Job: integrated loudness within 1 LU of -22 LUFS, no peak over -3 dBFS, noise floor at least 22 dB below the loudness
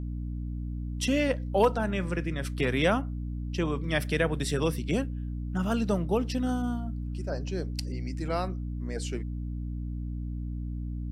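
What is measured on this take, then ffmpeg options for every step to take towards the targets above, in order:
hum 60 Hz; harmonics up to 300 Hz; hum level -31 dBFS; loudness -30.5 LUFS; peak -10.0 dBFS; loudness target -22.0 LUFS
-> -af "bandreject=f=60:t=h:w=6,bandreject=f=120:t=h:w=6,bandreject=f=180:t=h:w=6,bandreject=f=240:t=h:w=6,bandreject=f=300:t=h:w=6"
-af "volume=8.5dB,alimiter=limit=-3dB:level=0:latency=1"

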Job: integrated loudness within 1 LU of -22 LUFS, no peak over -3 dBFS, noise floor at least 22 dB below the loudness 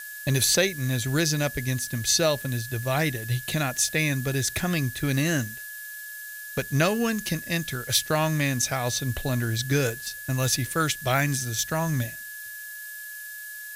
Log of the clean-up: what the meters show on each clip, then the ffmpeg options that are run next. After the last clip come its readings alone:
steady tone 1700 Hz; tone level -38 dBFS; noise floor -39 dBFS; noise floor target -47 dBFS; loudness -25.0 LUFS; peak -8.5 dBFS; loudness target -22.0 LUFS
-> -af "bandreject=f=1.7k:w=30"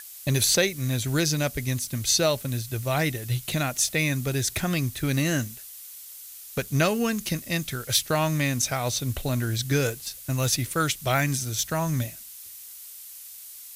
steady tone none; noise floor -43 dBFS; noise floor target -48 dBFS
-> -af "afftdn=nr=6:nf=-43"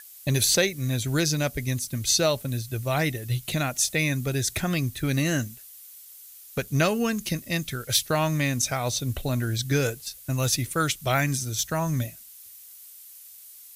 noise floor -47 dBFS; noise floor target -48 dBFS
-> -af "afftdn=nr=6:nf=-47"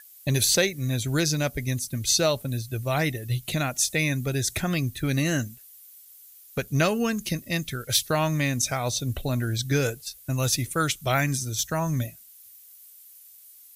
noise floor -50 dBFS; loudness -25.5 LUFS; peak -8.5 dBFS; loudness target -22.0 LUFS
-> -af "volume=3.5dB"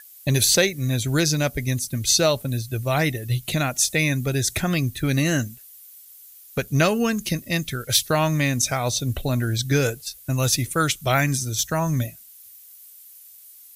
loudness -22.0 LUFS; peak -5.0 dBFS; noise floor -47 dBFS

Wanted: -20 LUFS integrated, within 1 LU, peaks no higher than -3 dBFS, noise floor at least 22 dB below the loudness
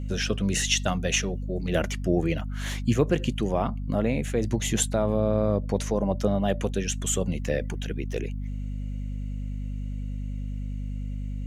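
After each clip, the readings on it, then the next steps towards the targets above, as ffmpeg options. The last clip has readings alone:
hum 50 Hz; harmonics up to 250 Hz; hum level -29 dBFS; loudness -27.5 LUFS; peak -8.0 dBFS; loudness target -20.0 LUFS
-> -af "bandreject=f=50:t=h:w=4,bandreject=f=100:t=h:w=4,bandreject=f=150:t=h:w=4,bandreject=f=200:t=h:w=4,bandreject=f=250:t=h:w=4"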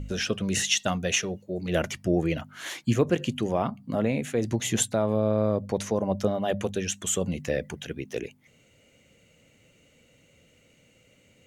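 hum none; loudness -27.5 LUFS; peak -9.0 dBFS; loudness target -20.0 LUFS
-> -af "volume=7.5dB,alimiter=limit=-3dB:level=0:latency=1"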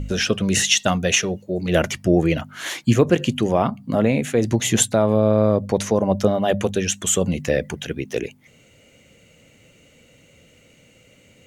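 loudness -20.0 LUFS; peak -3.0 dBFS; noise floor -54 dBFS

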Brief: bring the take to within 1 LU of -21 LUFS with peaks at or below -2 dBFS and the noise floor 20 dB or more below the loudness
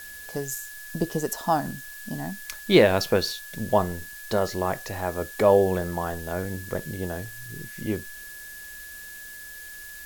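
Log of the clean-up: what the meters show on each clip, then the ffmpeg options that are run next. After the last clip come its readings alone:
steady tone 1700 Hz; tone level -41 dBFS; noise floor -41 dBFS; noise floor target -46 dBFS; loudness -26.0 LUFS; peak -4.5 dBFS; loudness target -21.0 LUFS
-> -af "bandreject=f=1.7k:w=30"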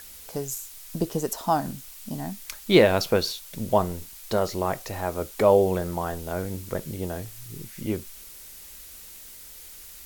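steady tone none; noise floor -45 dBFS; noise floor target -46 dBFS
-> -af "afftdn=nr=6:nf=-45"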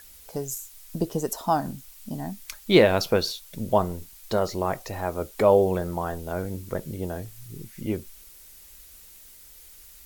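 noise floor -49 dBFS; loudness -26.0 LUFS; peak -4.0 dBFS; loudness target -21.0 LUFS
-> -af "volume=5dB,alimiter=limit=-2dB:level=0:latency=1"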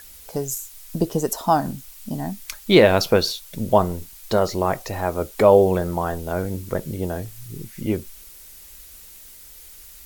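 loudness -21.5 LUFS; peak -2.0 dBFS; noise floor -44 dBFS

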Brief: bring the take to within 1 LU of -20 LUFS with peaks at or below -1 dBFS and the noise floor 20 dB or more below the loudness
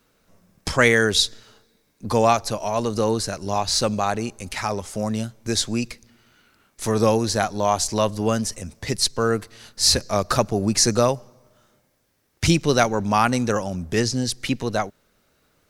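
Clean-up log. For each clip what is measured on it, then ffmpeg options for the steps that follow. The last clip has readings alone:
loudness -22.0 LUFS; peak -2.0 dBFS; loudness target -20.0 LUFS
-> -af "volume=2dB,alimiter=limit=-1dB:level=0:latency=1"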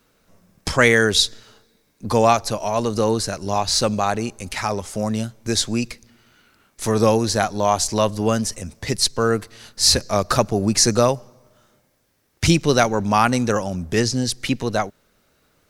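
loudness -20.0 LUFS; peak -1.0 dBFS; noise floor -64 dBFS

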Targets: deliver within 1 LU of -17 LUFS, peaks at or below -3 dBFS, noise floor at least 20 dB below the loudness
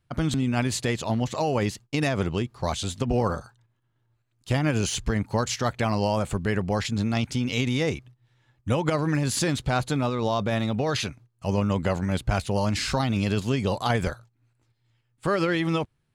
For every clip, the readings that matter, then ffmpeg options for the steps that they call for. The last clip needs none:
loudness -26.0 LUFS; peak -9.0 dBFS; loudness target -17.0 LUFS
-> -af "volume=9dB,alimiter=limit=-3dB:level=0:latency=1"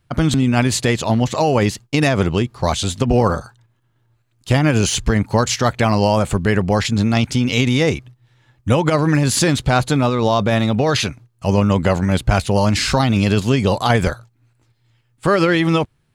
loudness -17.5 LUFS; peak -3.0 dBFS; noise floor -63 dBFS

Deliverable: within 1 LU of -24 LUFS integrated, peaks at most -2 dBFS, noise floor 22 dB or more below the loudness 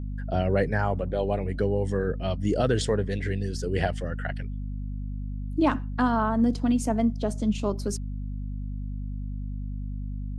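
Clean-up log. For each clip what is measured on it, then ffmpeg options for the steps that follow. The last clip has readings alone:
hum 50 Hz; harmonics up to 250 Hz; hum level -30 dBFS; loudness -28.0 LUFS; peak -10.5 dBFS; loudness target -24.0 LUFS
-> -af "bandreject=f=50:t=h:w=6,bandreject=f=100:t=h:w=6,bandreject=f=150:t=h:w=6,bandreject=f=200:t=h:w=6,bandreject=f=250:t=h:w=6"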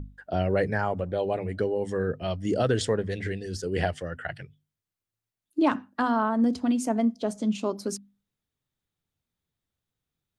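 hum none; loudness -28.0 LUFS; peak -11.5 dBFS; loudness target -24.0 LUFS
-> -af "volume=4dB"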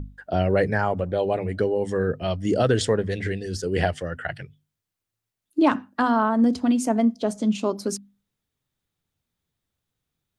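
loudness -24.0 LUFS; peak -7.5 dBFS; noise floor -85 dBFS

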